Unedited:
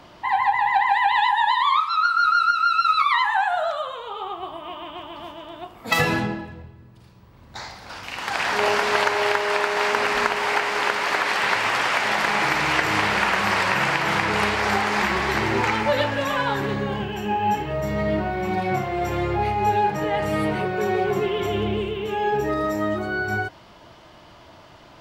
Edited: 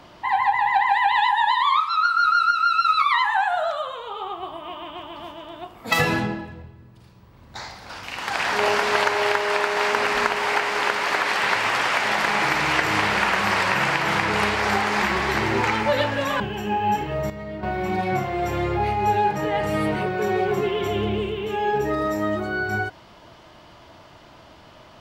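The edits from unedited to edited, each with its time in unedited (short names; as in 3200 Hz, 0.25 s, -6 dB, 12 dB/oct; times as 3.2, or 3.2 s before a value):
16.4–16.99 cut
17.89–18.22 gain -10.5 dB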